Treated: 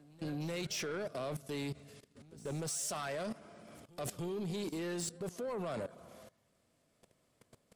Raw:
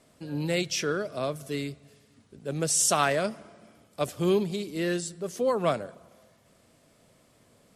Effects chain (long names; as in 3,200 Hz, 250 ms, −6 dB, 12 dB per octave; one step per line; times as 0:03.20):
output level in coarse steps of 20 dB
soft clipping −38.5 dBFS, distortion −13 dB
echo ahead of the sound 300 ms −21.5 dB
level +5 dB